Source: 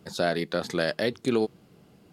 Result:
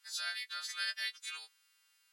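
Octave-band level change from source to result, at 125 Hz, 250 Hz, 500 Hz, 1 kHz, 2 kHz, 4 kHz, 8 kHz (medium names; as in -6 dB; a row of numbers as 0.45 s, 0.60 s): under -40 dB, under -40 dB, under -40 dB, -14.5 dB, -6.0 dB, -2.0 dB, -0.5 dB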